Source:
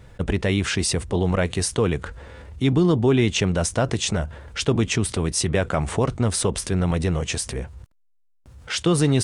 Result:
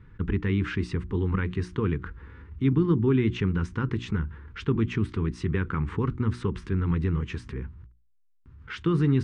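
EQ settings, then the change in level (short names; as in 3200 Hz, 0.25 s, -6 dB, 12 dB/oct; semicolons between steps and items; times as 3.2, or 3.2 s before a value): Butterworth band-stop 640 Hz, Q 0.91; LPF 1600 Hz 12 dB/oct; notches 60/120/180/240/300/360 Hz; -2.0 dB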